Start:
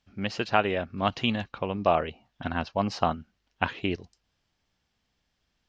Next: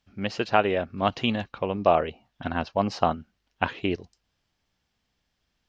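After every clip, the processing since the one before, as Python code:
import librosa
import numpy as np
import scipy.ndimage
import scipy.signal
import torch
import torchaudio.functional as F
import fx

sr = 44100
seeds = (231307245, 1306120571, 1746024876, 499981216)

y = fx.dynamic_eq(x, sr, hz=480.0, q=0.76, threshold_db=-36.0, ratio=4.0, max_db=4)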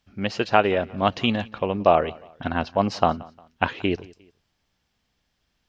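y = fx.echo_feedback(x, sr, ms=177, feedback_pct=37, wet_db=-23)
y = y * librosa.db_to_amplitude(3.0)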